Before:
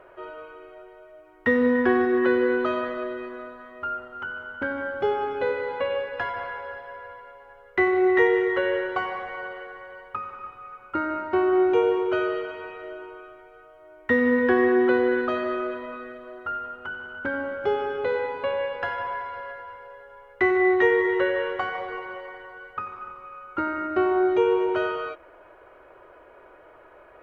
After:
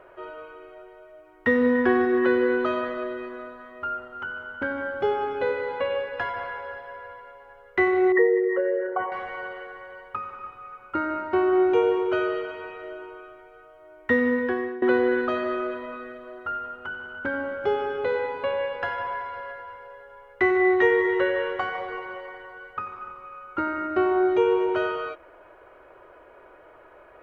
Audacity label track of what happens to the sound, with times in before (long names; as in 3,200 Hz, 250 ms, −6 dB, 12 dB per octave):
8.120000	9.120000	spectral envelope exaggerated exponent 2
14.130000	14.820000	fade out, to −20 dB